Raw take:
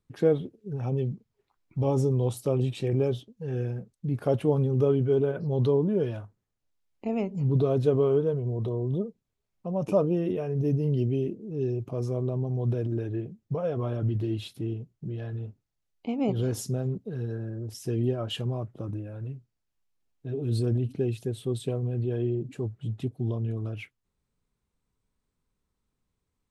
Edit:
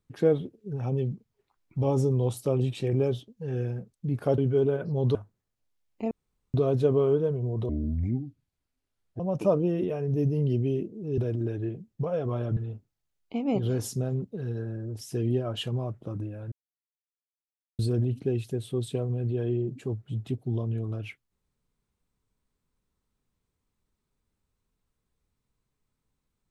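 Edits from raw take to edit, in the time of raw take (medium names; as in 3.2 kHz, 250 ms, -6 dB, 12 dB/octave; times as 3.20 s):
4.38–4.93 s: delete
5.70–6.18 s: delete
7.14–7.57 s: room tone
8.72–9.67 s: speed 63%
11.65–12.69 s: delete
14.08–15.30 s: delete
19.25–20.52 s: mute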